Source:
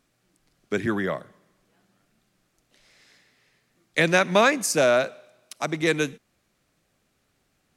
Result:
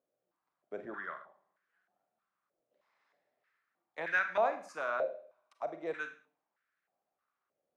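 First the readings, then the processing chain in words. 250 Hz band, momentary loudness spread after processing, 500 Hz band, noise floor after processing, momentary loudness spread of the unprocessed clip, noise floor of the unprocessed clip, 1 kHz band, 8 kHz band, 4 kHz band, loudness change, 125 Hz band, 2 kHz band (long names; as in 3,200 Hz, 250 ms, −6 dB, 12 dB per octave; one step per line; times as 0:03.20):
−23.0 dB, 16 LU, −13.5 dB, below −85 dBFS, 12 LU, −71 dBFS, −9.5 dB, below −30 dB, −25.0 dB, −13.0 dB, below −30 dB, −10.5 dB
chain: four-comb reverb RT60 0.44 s, combs from 33 ms, DRR 8 dB
band-pass on a step sequencer 3.2 Hz 550–1,600 Hz
level −4.5 dB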